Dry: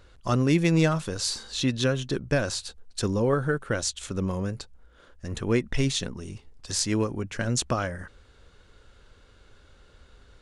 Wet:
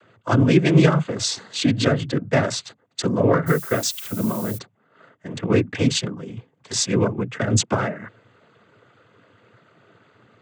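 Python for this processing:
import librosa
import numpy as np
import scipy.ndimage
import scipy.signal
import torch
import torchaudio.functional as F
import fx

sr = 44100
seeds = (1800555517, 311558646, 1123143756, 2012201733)

y = fx.wiener(x, sr, points=9)
y = fx.noise_vocoder(y, sr, seeds[0], bands=16)
y = fx.dmg_noise_colour(y, sr, seeds[1], colour='violet', level_db=-42.0, at=(3.46, 4.57), fade=0.02)
y = y * librosa.db_to_amplitude(6.5)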